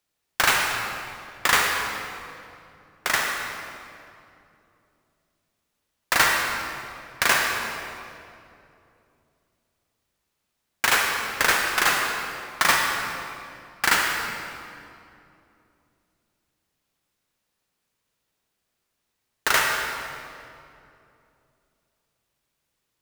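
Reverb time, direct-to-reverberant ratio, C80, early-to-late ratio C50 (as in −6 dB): 2.7 s, 0.5 dB, 2.5 dB, 1.0 dB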